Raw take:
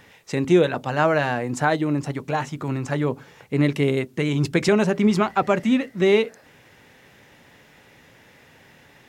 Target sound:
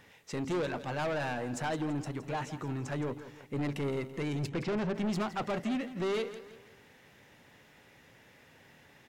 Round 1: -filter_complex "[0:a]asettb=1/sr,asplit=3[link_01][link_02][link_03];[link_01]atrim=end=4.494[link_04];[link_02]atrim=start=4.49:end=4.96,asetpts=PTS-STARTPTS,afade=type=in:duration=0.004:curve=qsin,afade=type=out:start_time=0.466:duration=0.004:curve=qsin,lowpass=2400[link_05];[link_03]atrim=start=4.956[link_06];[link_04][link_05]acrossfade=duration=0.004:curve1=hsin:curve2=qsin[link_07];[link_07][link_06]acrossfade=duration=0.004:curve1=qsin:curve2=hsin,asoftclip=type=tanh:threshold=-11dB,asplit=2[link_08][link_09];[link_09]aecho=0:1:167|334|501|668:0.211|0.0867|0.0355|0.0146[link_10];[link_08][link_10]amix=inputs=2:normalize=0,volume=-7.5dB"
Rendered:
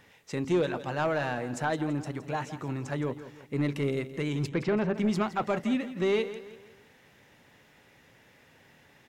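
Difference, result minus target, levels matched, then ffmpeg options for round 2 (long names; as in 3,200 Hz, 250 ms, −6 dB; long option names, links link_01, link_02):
soft clipping: distortion −10 dB
-filter_complex "[0:a]asettb=1/sr,asplit=3[link_01][link_02][link_03];[link_01]atrim=end=4.494[link_04];[link_02]atrim=start=4.49:end=4.96,asetpts=PTS-STARTPTS,afade=type=in:duration=0.004:curve=qsin,afade=type=out:start_time=0.466:duration=0.004:curve=qsin,lowpass=2400[link_05];[link_03]atrim=start=4.956[link_06];[link_04][link_05]acrossfade=duration=0.004:curve1=hsin:curve2=qsin[link_07];[link_07][link_06]acrossfade=duration=0.004:curve1=qsin:curve2=hsin,asoftclip=type=tanh:threshold=-21.5dB,asplit=2[link_08][link_09];[link_09]aecho=0:1:167|334|501|668:0.211|0.0867|0.0355|0.0146[link_10];[link_08][link_10]amix=inputs=2:normalize=0,volume=-7.5dB"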